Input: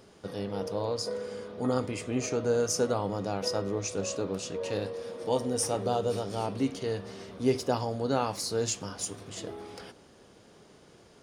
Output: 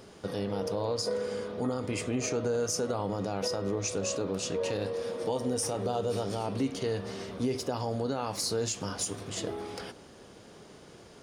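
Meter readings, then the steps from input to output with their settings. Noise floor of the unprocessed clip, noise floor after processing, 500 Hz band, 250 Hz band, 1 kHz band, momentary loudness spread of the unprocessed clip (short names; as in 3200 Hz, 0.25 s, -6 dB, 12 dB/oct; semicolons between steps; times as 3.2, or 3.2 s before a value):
-57 dBFS, -52 dBFS, -1.0 dB, -0.5 dB, -2.0 dB, 12 LU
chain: compressor 2:1, threshold -32 dBFS, peak gain reduction 7 dB; limiter -25.5 dBFS, peak gain reduction 6 dB; gain +4.5 dB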